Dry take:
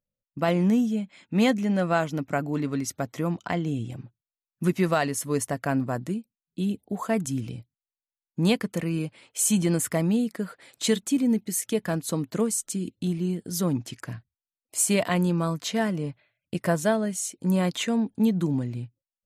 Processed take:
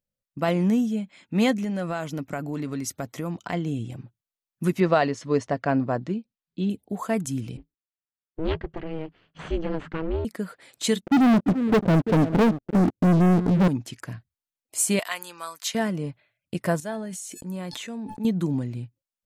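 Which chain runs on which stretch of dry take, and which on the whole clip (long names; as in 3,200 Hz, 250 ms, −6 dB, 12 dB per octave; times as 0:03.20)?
0:01.64–0:03.53: high-shelf EQ 6,300 Hz +4 dB + downward compressor 3 to 1, threshold −26 dBFS
0:04.80–0:06.70: low-pass filter 5,400 Hz 24 dB per octave + dynamic equaliser 540 Hz, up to +5 dB, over −33 dBFS, Q 0.72
0:07.57–0:10.25: lower of the sound and its delayed copy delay 0.66 ms + Bessel low-pass filter 2,300 Hz, order 4 + ring modulation 160 Hz
0:11.01–0:13.68: Butterworth low-pass 630 Hz + single-tap delay 342 ms −20.5 dB + leveller curve on the samples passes 5
0:14.99–0:15.75: high-pass filter 1,100 Hz + high-shelf EQ 7,700 Hz +9 dB
0:16.80–0:18.25: noise gate −53 dBFS, range −20 dB + tuned comb filter 860 Hz, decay 0.26 s, mix 70% + level that may fall only so fast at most 25 dB per second
whole clip: no processing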